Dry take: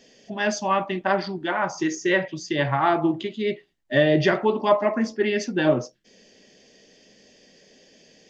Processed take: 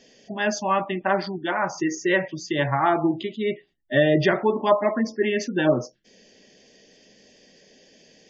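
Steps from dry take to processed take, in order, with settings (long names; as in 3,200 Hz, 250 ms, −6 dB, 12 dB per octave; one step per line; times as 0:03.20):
gate on every frequency bin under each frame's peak −30 dB strong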